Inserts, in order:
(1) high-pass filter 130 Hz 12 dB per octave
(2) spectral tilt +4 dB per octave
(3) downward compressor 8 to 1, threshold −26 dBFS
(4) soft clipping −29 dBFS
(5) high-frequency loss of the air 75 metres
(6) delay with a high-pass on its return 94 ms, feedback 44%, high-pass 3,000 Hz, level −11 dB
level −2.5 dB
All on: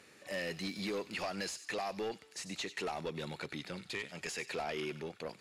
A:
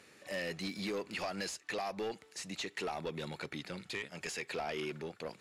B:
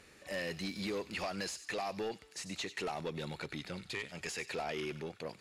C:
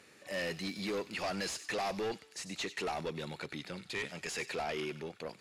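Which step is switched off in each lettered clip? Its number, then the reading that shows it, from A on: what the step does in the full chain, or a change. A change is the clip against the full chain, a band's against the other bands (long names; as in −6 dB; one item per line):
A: 6, echo-to-direct ratio −19.0 dB to none audible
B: 1, 125 Hz band +1.5 dB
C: 3, average gain reduction 3.0 dB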